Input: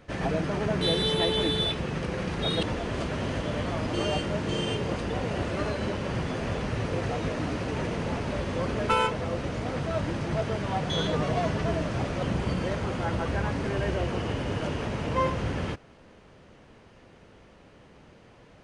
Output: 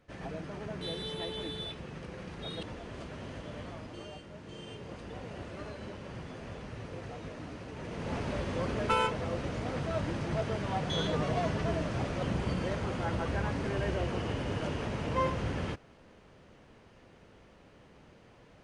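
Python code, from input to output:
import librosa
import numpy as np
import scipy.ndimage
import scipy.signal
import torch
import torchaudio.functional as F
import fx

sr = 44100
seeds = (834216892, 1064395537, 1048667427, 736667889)

y = fx.gain(x, sr, db=fx.line((3.66, -12.5), (4.22, -19.5), (5.12, -13.0), (7.76, -13.0), (8.17, -4.0)))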